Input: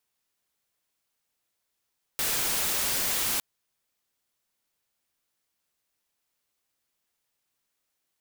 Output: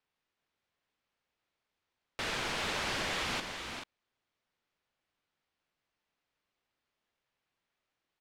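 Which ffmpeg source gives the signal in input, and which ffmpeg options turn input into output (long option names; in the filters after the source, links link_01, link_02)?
-f lavfi -i "anoisesrc=color=white:amplitude=0.073:duration=1.21:sample_rate=44100:seed=1"
-af "lowpass=3200,aecho=1:1:393|436:0.355|0.355"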